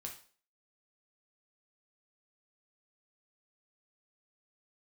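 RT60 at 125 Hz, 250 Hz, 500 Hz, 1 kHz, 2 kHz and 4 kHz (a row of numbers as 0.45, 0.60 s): 0.35, 0.40, 0.45, 0.40, 0.40, 0.40 s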